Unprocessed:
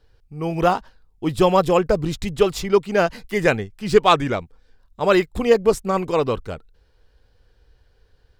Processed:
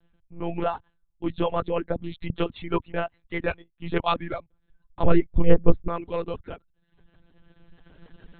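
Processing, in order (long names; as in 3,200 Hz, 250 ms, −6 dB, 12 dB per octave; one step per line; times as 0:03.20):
camcorder AGC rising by 9.6 dB per second
0:02.91–0:03.98: transient designer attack −1 dB, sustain −8 dB
one-pitch LPC vocoder at 8 kHz 170 Hz
reverb reduction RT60 0.7 s
0:05.03–0:05.88: spectral tilt −3.5 dB per octave
level −8.5 dB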